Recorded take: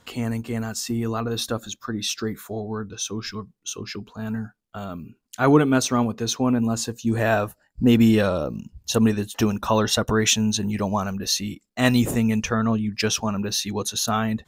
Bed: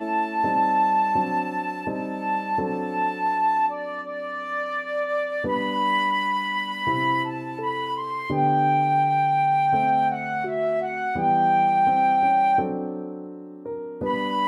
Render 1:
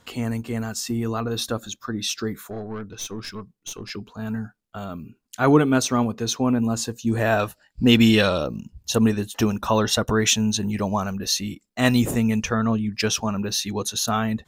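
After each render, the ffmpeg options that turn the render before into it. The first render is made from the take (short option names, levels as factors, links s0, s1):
-filter_complex "[0:a]asettb=1/sr,asplit=3[s0][s1][s2];[s0]atrim=end=2.504[s3];[s1]atrim=start=2.5:end=3.9,asetpts=PTS-STARTPTS,afade=t=in:d=0.004:c=qsin,afade=t=out:st=1.396:d=0.004:c=qsin,aeval=exprs='(tanh(20*val(0)+0.45)-tanh(0.45))/20':c=same[s4];[s2]atrim=start=3.896[s5];[s3][s4]acrossfade=d=0.004:c1=hsin:c2=qsin[s6];[s6][s5]acrossfade=d=0.004:c1=qsin:c2=hsin,asettb=1/sr,asplit=3[s7][s8][s9];[s7]atrim=end=7.394[s10];[s8]atrim=start=7.39:end=8.47,asetpts=PTS-STARTPTS,afade=t=in:d=0.004:c=qsin,afade=t=out:st=1.076:d=0.004:c=qsin,equalizer=f=3500:t=o:w=1.9:g=11[s11];[s9]atrim=start=8.466[s12];[s10][s11]acrossfade=d=0.004:c1=hsin:c2=qsin[s13];[s13][s12]acrossfade=d=0.004:c1=qsin:c2=hsin"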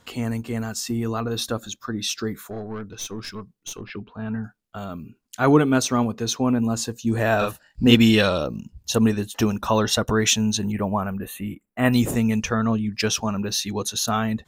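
-filter_complex "[0:a]asettb=1/sr,asplit=3[s0][s1][s2];[s0]atrim=end=3.814[s3];[s1]atrim=start=3.81:end=4.44,asetpts=PTS-STARTPTS,afade=t=in:d=0.004:c=qsin,afade=t=out:st=0.626:d=0.004:c=qsin,lowpass=f=3200:w=0.5412,lowpass=f=3200:w=1.3066[s4];[s2]atrim=start=4.436[s5];[s3][s4]acrossfade=d=0.004:c1=hsin:c2=qsin[s6];[s6][s5]acrossfade=d=0.004:c1=qsin:c2=hsin,asettb=1/sr,asplit=3[s7][s8][s9];[s7]atrim=end=7.374[s10];[s8]atrim=start=7.37:end=7.95,asetpts=PTS-STARTPTS,afade=t=in:d=0.004:c=qsin,afade=t=out:st=0.576:d=0.004:c=qsin,asplit=2[s11][s12];[s12]adelay=43,volume=0.708[s13];[s11][s13]amix=inputs=2:normalize=0,atrim=end_sample=25578[s14];[s9]atrim=start=7.946[s15];[s10][s14]acrossfade=d=0.004:c1=hsin:c2=qsin[s16];[s16][s15]acrossfade=d=0.004:c1=qsin:c2=hsin,asettb=1/sr,asplit=3[s17][s18][s19];[s17]atrim=end=10.724[s20];[s18]atrim=start=10.72:end=11.93,asetpts=PTS-STARTPTS,afade=t=in:d=0.004:c=qsin,afade=t=out:st=1.206:d=0.004:c=qsin,asuperstop=centerf=5100:order=4:qfactor=0.69[s21];[s19]atrim=start=11.926[s22];[s20][s21]acrossfade=d=0.004:c1=hsin:c2=qsin[s23];[s23][s22]acrossfade=d=0.004:c1=qsin:c2=hsin"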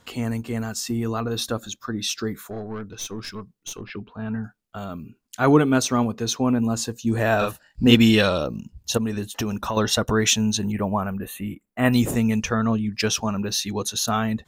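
-filter_complex "[0:a]asettb=1/sr,asplit=3[s0][s1][s2];[s0]atrim=end=8.974[s3];[s1]atrim=start=8.97:end=9.77,asetpts=PTS-STARTPTS,afade=t=in:d=0.004:c=qsin,afade=t=out:st=0.796:d=0.004:c=qsin,acompressor=threshold=0.0794:ratio=5:attack=3.2:release=140:knee=1:detection=peak[s4];[s2]atrim=start=9.766[s5];[s3][s4]acrossfade=d=0.004:c1=hsin:c2=qsin[s6];[s6][s5]acrossfade=d=0.004:c1=qsin:c2=hsin"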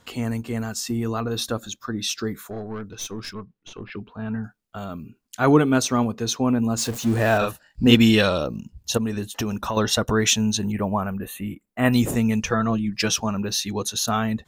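-filter_complex "[0:a]asettb=1/sr,asplit=3[s0][s1][s2];[s0]atrim=end=3.334[s3];[s1]atrim=start=3.33:end=3.92,asetpts=PTS-STARTPTS,afade=t=in:d=0.004:c=qsin,afade=t=out:st=0.586:d=0.004:c=qsin,lowpass=3000[s4];[s2]atrim=start=3.916[s5];[s3][s4]acrossfade=d=0.004:c1=hsin:c2=qsin[s6];[s6][s5]acrossfade=d=0.004:c1=qsin:c2=hsin,asettb=1/sr,asplit=3[s7][s8][s9];[s7]atrim=end=6.784[s10];[s8]atrim=start=6.78:end=7.38,asetpts=PTS-STARTPTS,afade=t=in:d=0.004:c=qsin,afade=t=out:st=0.596:d=0.004:c=qsin,aeval=exprs='val(0)+0.5*0.0355*sgn(val(0))':c=same[s11];[s9]atrim=start=7.376[s12];[s10][s11]acrossfade=d=0.004:c1=hsin:c2=qsin[s13];[s13][s12]acrossfade=d=0.004:c1=qsin:c2=hsin,asettb=1/sr,asplit=3[s14][s15][s16];[s14]atrim=end=12.494[s17];[s15]atrim=start=12.49:end=13.16,asetpts=PTS-STARTPTS,afade=t=in:d=0.004:c=qsin,afade=t=out:st=0.666:d=0.004:c=qsin,aecho=1:1:6:0.58,atrim=end_sample=29547[s18];[s16]atrim=start=13.156[s19];[s17][s18]acrossfade=d=0.004:c1=hsin:c2=qsin[s20];[s20][s19]acrossfade=d=0.004:c1=qsin:c2=hsin"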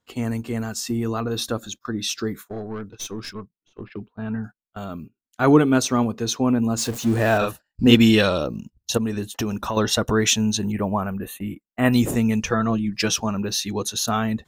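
-af "equalizer=f=330:t=o:w=0.77:g=2.5,agate=range=0.0891:threshold=0.0158:ratio=16:detection=peak"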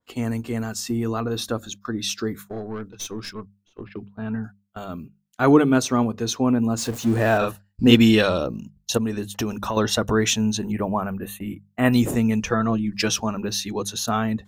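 -af "bandreject=f=50:t=h:w=6,bandreject=f=100:t=h:w=6,bandreject=f=150:t=h:w=6,bandreject=f=200:t=h:w=6,adynamicequalizer=threshold=0.0141:dfrequency=2300:dqfactor=0.7:tfrequency=2300:tqfactor=0.7:attack=5:release=100:ratio=0.375:range=2:mode=cutabove:tftype=highshelf"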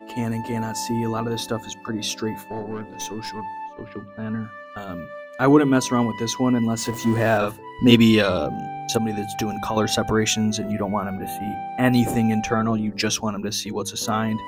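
-filter_complex "[1:a]volume=0.251[s0];[0:a][s0]amix=inputs=2:normalize=0"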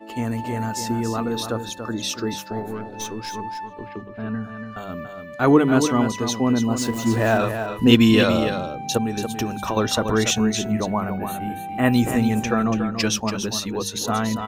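-af "aecho=1:1:285:0.398"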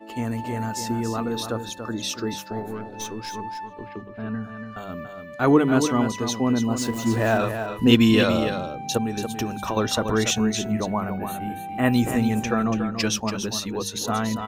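-af "volume=0.794"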